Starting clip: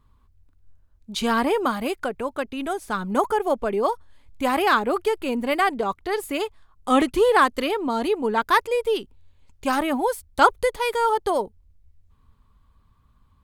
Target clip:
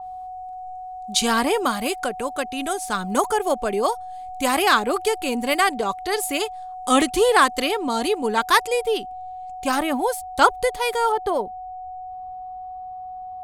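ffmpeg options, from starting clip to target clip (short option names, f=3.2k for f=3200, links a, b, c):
-af "asetnsamples=n=441:p=0,asendcmd='8.83 equalizer g 6.5;11.12 equalizer g -5',equalizer=f=7.9k:t=o:w=2.1:g=14,aeval=exprs='val(0)+0.0251*sin(2*PI*740*n/s)':c=same,adynamicequalizer=threshold=0.0224:dfrequency=4300:dqfactor=0.7:tfrequency=4300:tqfactor=0.7:attack=5:release=100:ratio=0.375:range=2:mode=cutabove:tftype=highshelf"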